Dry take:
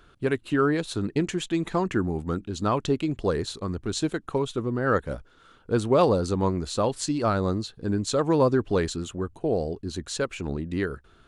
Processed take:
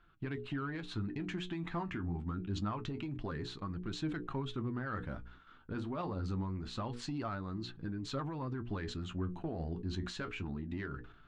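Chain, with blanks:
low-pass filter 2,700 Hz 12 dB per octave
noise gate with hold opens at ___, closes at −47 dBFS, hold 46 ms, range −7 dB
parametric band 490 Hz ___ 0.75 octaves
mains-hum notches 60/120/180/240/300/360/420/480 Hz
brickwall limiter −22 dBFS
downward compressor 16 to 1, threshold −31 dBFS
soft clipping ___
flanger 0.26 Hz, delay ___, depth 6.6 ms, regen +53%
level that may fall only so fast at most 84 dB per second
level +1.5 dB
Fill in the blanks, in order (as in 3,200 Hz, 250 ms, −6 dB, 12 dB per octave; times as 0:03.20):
−45 dBFS, −12.5 dB, −25.5 dBFS, 5.7 ms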